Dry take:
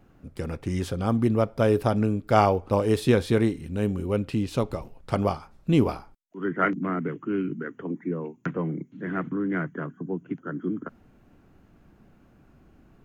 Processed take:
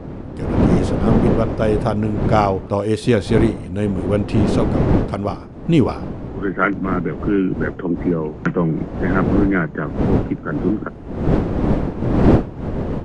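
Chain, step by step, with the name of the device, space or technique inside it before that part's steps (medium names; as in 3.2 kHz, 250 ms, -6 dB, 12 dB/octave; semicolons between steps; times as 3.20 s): smartphone video outdoors (wind noise 300 Hz -25 dBFS; level rider gain up to 12 dB; trim -1 dB; AAC 96 kbps 22.05 kHz)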